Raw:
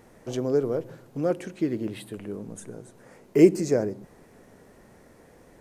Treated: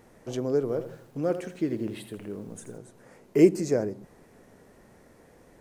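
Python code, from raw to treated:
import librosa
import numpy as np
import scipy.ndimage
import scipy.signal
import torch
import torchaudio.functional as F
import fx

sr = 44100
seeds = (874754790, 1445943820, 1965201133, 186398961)

y = fx.echo_crushed(x, sr, ms=82, feedback_pct=35, bits=9, wet_db=-11, at=(0.6, 2.78))
y = F.gain(torch.from_numpy(y), -2.0).numpy()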